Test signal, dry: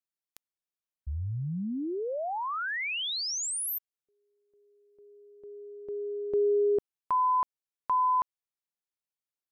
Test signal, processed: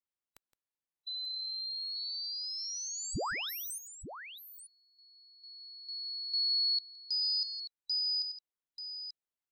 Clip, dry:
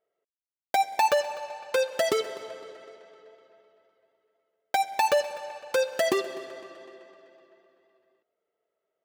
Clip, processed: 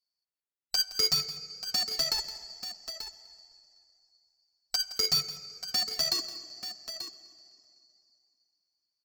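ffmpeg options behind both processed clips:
-filter_complex "[0:a]afftfilt=real='real(if(lt(b,736),b+184*(1-2*mod(floor(b/184),2)),b),0)':imag='imag(if(lt(b,736),b+184*(1-2*mod(floor(b/184),2)),b),0)':win_size=2048:overlap=0.75,highshelf=f=2.9k:g=-7,asplit=2[a][b];[b]acrusher=bits=3:mix=0:aa=0.000001,volume=-9dB[c];[a][c]amix=inputs=2:normalize=0,aecho=1:1:167|886:0.178|0.299,volume=-1.5dB"

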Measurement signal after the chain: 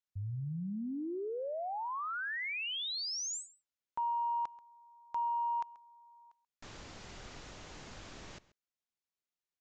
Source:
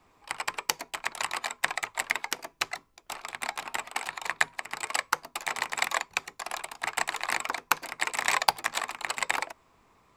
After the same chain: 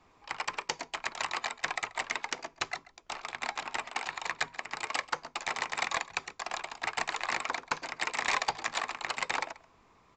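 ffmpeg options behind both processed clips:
-filter_complex "[0:a]aresample=16000,asoftclip=type=tanh:threshold=-20dB,aresample=44100,asplit=2[a][b];[b]adelay=134.1,volume=-19dB,highshelf=f=4k:g=-3.02[c];[a][c]amix=inputs=2:normalize=0"

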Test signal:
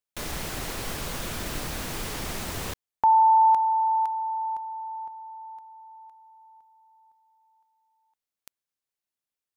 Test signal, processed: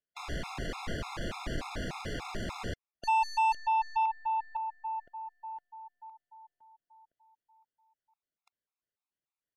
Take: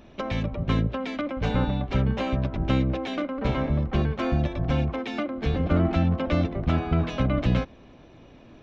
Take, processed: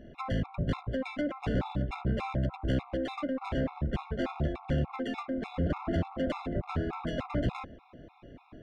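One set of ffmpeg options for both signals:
-af "aeval=exprs='(tanh(17.8*val(0)+0.15)-tanh(0.15))/17.8':c=same,adynamicsmooth=sensitivity=3.5:basefreq=3.4k,afftfilt=real='re*gt(sin(2*PI*3.4*pts/sr)*(1-2*mod(floor(b*sr/1024/690),2)),0)':imag='im*gt(sin(2*PI*3.4*pts/sr)*(1-2*mod(floor(b*sr/1024/690),2)),0)':win_size=1024:overlap=0.75,volume=1.5dB"

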